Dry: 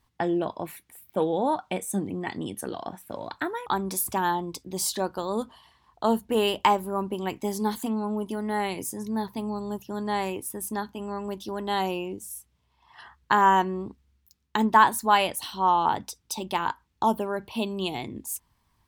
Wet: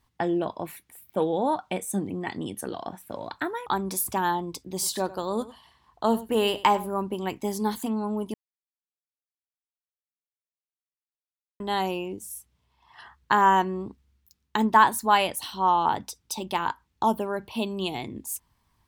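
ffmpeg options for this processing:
-filter_complex "[0:a]asettb=1/sr,asplit=3[a][b][c];[a]atrim=end=4.724[d];[b]atrim=start=4.72:end=6.94,asetpts=PTS-STARTPTS,afade=t=in:d=0.004:c=qsin,afade=t=out:st=2.216:d=0.004:c=qsin,aecho=1:1:96:0.141,atrim=end_sample=97902[e];[c]atrim=start=6.936[f];[d][e]acrossfade=d=0.004:c1=hsin:c2=qsin[g];[g][f]acrossfade=d=0.004:c1=qsin:c2=hsin,asplit=3[h][i][j];[h]atrim=end=8.34,asetpts=PTS-STARTPTS,afade=t=out:st=8.336:d=0.004:c=hsin[k];[i]atrim=start=8.34:end=11.6,asetpts=PTS-STARTPTS,volume=0[l];[j]atrim=start=11.6,asetpts=PTS-STARTPTS,afade=t=in:d=0.004:c=hsin[m];[k][l][m]concat=n=3:v=0:a=1"

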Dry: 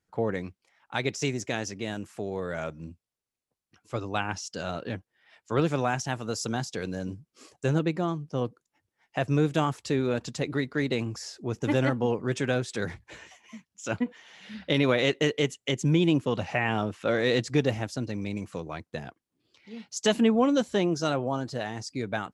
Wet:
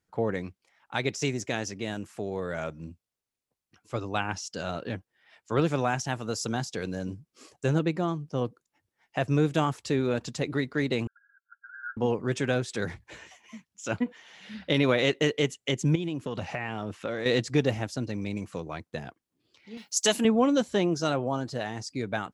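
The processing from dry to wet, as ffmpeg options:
-filter_complex "[0:a]asettb=1/sr,asplit=3[a][b][c];[a]atrim=end=11.074[d];[b]atrim=start=11.07:end=11.97,asetpts=PTS-STARTPTS,afade=t=in:d=0.004:c=qsin,afade=t=out:st=0.896:d=0.004:c=qsin,asuperpass=centerf=1500:order=20:qfactor=4.7[e];[c]atrim=start=11.966[f];[d][e]acrossfade=d=0.004:c1=hsin:c2=qsin[g];[g][f]acrossfade=d=0.004:c1=qsin:c2=hsin,asettb=1/sr,asplit=3[h][i][j];[h]atrim=end=15.954[k];[i]atrim=start=15.95:end=17.26,asetpts=PTS-STARTPTS,afade=t=in:d=0.004:c=qsin,afade=t=out:st=1.306:d=0.004:c=qsin,acompressor=threshold=-27dB:ratio=12:attack=3.2:release=140:knee=1:detection=peak[l];[j]atrim=start=17.256[m];[k][l]acrossfade=d=0.004:c1=hsin:c2=qsin[n];[n][m]acrossfade=d=0.004:c1=qsin:c2=hsin,asettb=1/sr,asplit=3[o][p][q];[o]atrim=end=19.774[r];[p]atrim=start=19.77:end=20.25,asetpts=PTS-STARTPTS,afade=t=in:d=0.004:c=qsin,afade=t=out:st=0.476:d=0.004:c=qsin,aemphasis=mode=production:type=bsi[s];[q]atrim=start=20.246[t];[r][s]acrossfade=d=0.004:c1=hsin:c2=qsin[u];[u][t]acrossfade=d=0.004:c1=qsin:c2=hsin"

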